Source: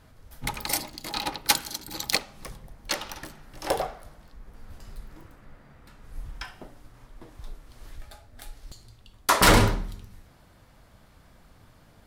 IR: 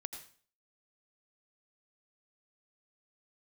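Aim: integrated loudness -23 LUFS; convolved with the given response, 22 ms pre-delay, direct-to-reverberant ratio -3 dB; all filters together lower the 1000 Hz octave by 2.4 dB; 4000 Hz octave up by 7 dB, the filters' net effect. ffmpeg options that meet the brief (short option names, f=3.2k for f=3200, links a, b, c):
-filter_complex "[0:a]equalizer=f=1k:t=o:g=-3.5,equalizer=f=4k:t=o:g=8.5,asplit=2[a][b];[1:a]atrim=start_sample=2205,adelay=22[c];[b][c]afir=irnorm=-1:irlink=0,volume=5dB[d];[a][d]amix=inputs=2:normalize=0,volume=-4.5dB"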